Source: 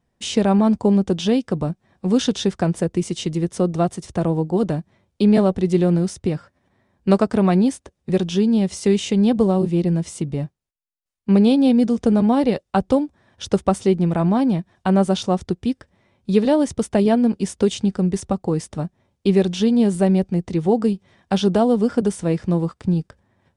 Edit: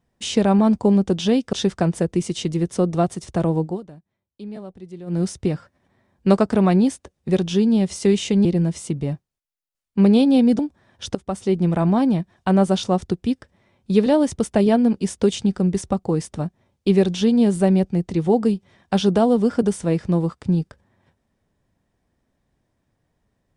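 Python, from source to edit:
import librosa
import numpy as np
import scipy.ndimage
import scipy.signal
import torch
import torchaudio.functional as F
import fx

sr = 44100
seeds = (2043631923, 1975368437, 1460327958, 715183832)

y = fx.edit(x, sr, fx.cut(start_s=1.53, length_s=0.81),
    fx.fade_down_up(start_s=4.45, length_s=1.59, db=-19.5, fade_s=0.17),
    fx.cut(start_s=9.26, length_s=0.5),
    fx.cut(start_s=11.9, length_s=1.08),
    fx.fade_in_from(start_s=13.54, length_s=0.51, floor_db=-19.5), tone=tone)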